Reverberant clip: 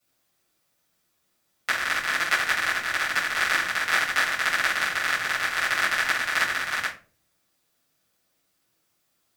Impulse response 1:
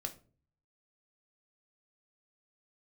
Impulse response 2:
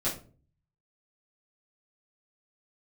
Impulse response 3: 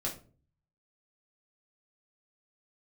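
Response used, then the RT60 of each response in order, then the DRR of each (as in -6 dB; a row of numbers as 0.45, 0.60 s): 2; 0.40, 0.40, 0.40 s; 5.0, -9.5, -3.0 dB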